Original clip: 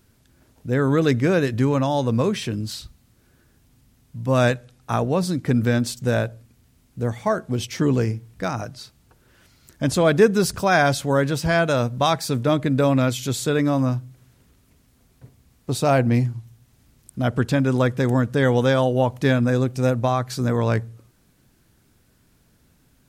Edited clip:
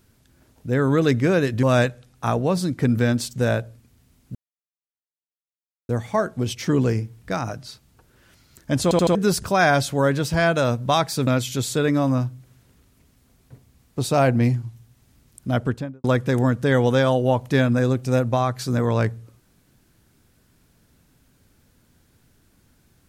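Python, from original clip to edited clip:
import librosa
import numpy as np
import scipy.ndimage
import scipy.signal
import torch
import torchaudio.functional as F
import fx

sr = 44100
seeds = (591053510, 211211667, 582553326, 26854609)

y = fx.studio_fade_out(x, sr, start_s=17.24, length_s=0.51)
y = fx.edit(y, sr, fx.cut(start_s=1.63, length_s=2.66),
    fx.insert_silence(at_s=7.01, length_s=1.54),
    fx.stutter_over(start_s=9.95, slice_s=0.08, count=4),
    fx.cut(start_s=12.39, length_s=0.59), tone=tone)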